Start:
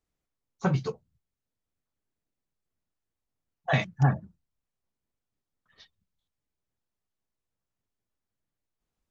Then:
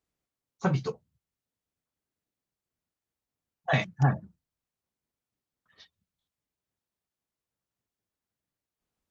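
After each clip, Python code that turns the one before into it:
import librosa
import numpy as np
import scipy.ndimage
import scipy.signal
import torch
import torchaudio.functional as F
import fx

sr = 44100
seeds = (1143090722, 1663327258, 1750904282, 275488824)

y = fx.highpass(x, sr, hz=79.0, slope=6)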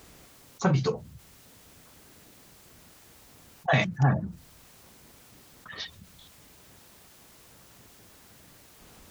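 y = fx.env_flatten(x, sr, amount_pct=50)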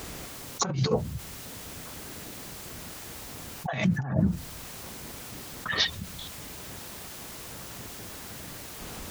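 y = fx.over_compress(x, sr, threshold_db=-33.0, ratio=-1.0)
y = y * librosa.db_to_amplitude(6.5)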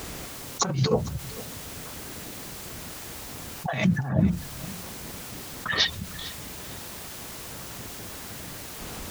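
y = fx.echo_feedback(x, sr, ms=453, feedback_pct=27, wet_db=-18.0)
y = y * librosa.db_to_amplitude(2.5)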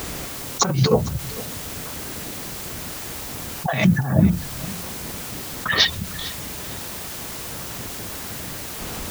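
y = fx.dmg_noise_colour(x, sr, seeds[0], colour='violet', level_db=-47.0)
y = y * librosa.db_to_amplitude(6.0)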